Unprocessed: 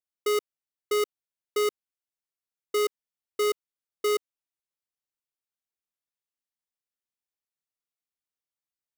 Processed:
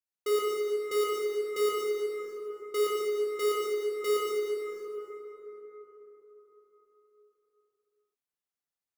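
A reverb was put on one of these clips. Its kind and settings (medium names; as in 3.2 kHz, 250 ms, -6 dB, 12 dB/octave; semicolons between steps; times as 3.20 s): plate-style reverb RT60 4.5 s, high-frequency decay 0.4×, DRR -6 dB; trim -7 dB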